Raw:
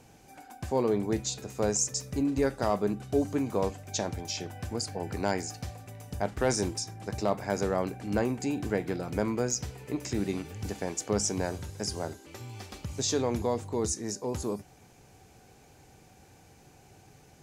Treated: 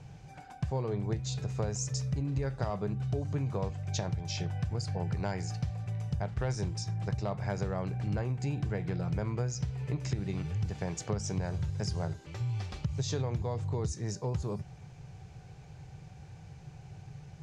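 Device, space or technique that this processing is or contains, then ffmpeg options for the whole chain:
jukebox: -af "lowpass=5400,lowshelf=frequency=190:width_type=q:width=3:gain=8,acompressor=threshold=-29dB:ratio=6"

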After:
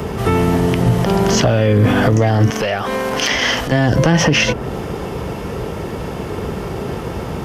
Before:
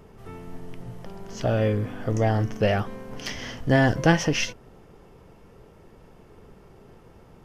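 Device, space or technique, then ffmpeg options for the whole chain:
mastering chain: -filter_complex "[0:a]highpass=frequency=47:width=0.5412,highpass=frequency=47:width=1.3066,equalizer=frequency=3500:width_type=o:width=0.77:gain=2,acrossover=split=200|1200|2800[link_01][link_02][link_03][link_04];[link_01]acompressor=threshold=-25dB:ratio=4[link_05];[link_02]acompressor=threshold=-24dB:ratio=4[link_06];[link_03]acompressor=threshold=-37dB:ratio=4[link_07];[link_04]acompressor=threshold=-43dB:ratio=4[link_08];[link_05][link_06][link_07][link_08]amix=inputs=4:normalize=0,acompressor=threshold=-33dB:ratio=2,asoftclip=type=hard:threshold=-22.5dB,alimiter=level_in=31dB:limit=-1dB:release=50:level=0:latency=1,asettb=1/sr,asplit=3[link_09][link_10][link_11];[link_09]atrim=end=2.504[link_12];[link_10]atrim=start=2.5:end=3.72,asetpts=PTS-STARTPTS,afade=type=in:duration=0.004:curve=qsin,afade=type=out:start_time=1.216:duration=0.004:curve=qsin,equalizer=frequency=110:width_type=o:width=3:gain=-14.5[link_13];[link_11]atrim=start=3.716[link_14];[link_12][link_13]acrossfade=duration=0.004:curve1=hsin:curve2=qsin[link_15];[link_15][link_14]acrossfade=duration=0.004:curve1=qsin:curve2=hsin,volume=-4dB"

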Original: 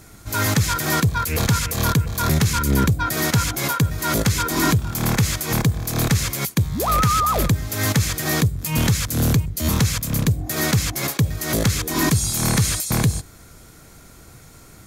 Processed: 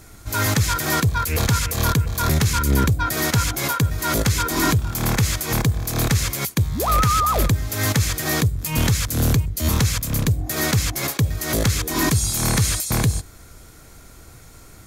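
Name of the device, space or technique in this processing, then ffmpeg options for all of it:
low shelf boost with a cut just above: -af "lowshelf=frequency=71:gain=5.5,equalizer=frequency=170:width_type=o:width=1:gain=-4"

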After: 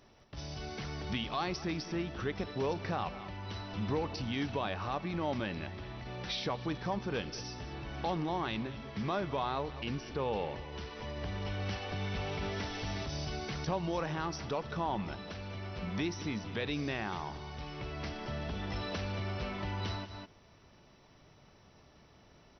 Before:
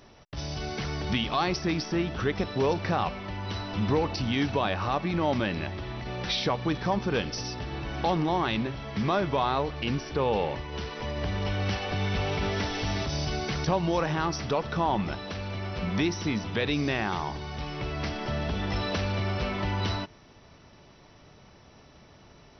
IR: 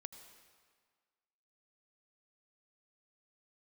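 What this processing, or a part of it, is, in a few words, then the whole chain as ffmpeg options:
ducked delay: -filter_complex "[0:a]asplit=3[link_01][link_02][link_03];[link_02]adelay=202,volume=-5dB[link_04];[link_03]apad=whole_len=1005498[link_05];[link_04][link_05]sidechaincompress=threshold=-43dB:ratio=8:attack=16:release=145[link_06];[link_01][link_06]amix=inputs=2:normalize=0,volume=-8dB"

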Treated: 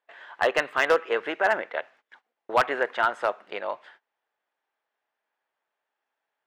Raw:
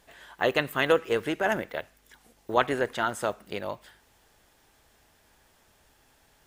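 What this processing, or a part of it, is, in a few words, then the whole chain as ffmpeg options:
walkie-talkie: -af "highpass=600,lowpass=2300,asoftclip=type=hard:threshold=-18.5dB,agate=range=-22dB:threshold=-58dB:ratio=16:detection=peak,volume=6dB"

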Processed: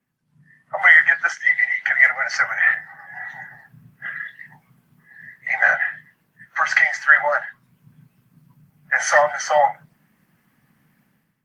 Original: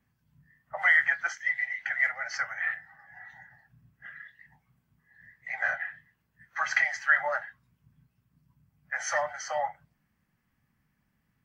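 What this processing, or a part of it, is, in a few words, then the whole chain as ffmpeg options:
video call: -af "highpass=frequency=130:width=0.5412,highpass=frequency=130:width=1.3066,dynaudnorm=framelen=120:gausssize=7:maxgain=15.5dB" -ar 48000 -c:a libopus -b:a 32k

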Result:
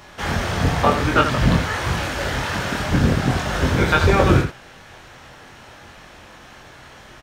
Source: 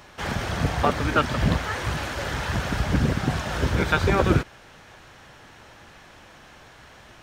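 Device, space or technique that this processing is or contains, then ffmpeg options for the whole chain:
slapback doubling: -filter_complex "[0:a]asplit=3[link_01][link_02][link_03];[link_02]adelay=23,volume=-3dB[link_04];[link_03]adelay=85,volume=-7.5dB[link_05];[link_01][link_04][link_05]amix=inputs=3:normalize=0,asettb=1/sr,asplit=3[link_06][link_07][link_08];[link_06]atrim=end=2.464[link_09];[link_07]atrim=start=2.46:end=2.91,asetpts=PTS-STARTPTS,afade=type=in:duration=0.004:curve=qsin,afade=type=out:start_time=0.446:duration=0.004:curve=qsin,highpass=frequency=210:poles=1[link_10];[link_08]atrim=start=2.906[link_11];[link_09][link_10]acrossfade=duration=0.004:curve1=hsin:curve2=qsin[link_12];[link_12][link_11]acrossfade=duration=0.004:curve1=qsin:curve2=hsin,volume=3dB"

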